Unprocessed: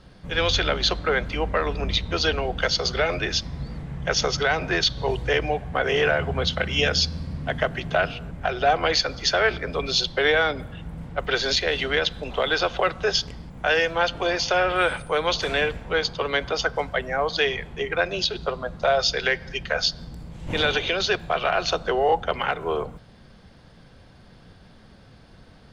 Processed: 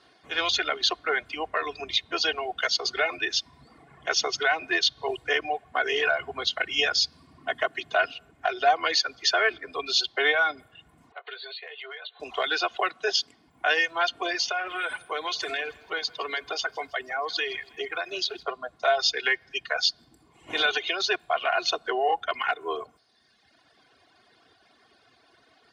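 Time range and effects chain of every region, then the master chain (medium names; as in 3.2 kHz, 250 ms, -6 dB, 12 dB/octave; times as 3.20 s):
11.12–12.20 s: brick-wall FIR band-pass 380–4600 Hz + doubling 18 ms -8.5 dB + compression 12:1, threshold -33 dBFS
12.75–13.47 s: high-pass 130 Hz + short-mantissa float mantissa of 8-bit
14.50–18.43 s: compression 4:1, threshold -22 dBFS + bit-crushed delay 161 ms, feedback 55%, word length 9-bit, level -13 dB
whole clip: comb 2.8 ms, depth 66%; reverb removal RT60 1.3 s; frequency weighting A; trim -3 dB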